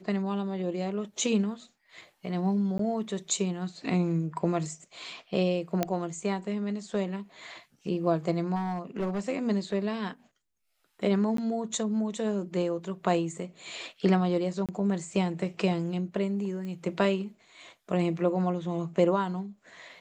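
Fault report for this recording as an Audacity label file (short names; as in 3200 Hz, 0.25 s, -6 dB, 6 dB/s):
2.780000	2.790000	gap
5.830000	5.830000	pop -12 dBFS
8.550000	9.200000	clipped -25.5 dBFS
11.370000	11.380000	gap 13 ms
14.660000	14.690000	gap 27 ms
16.650000	16.650000	pop -28 dBFS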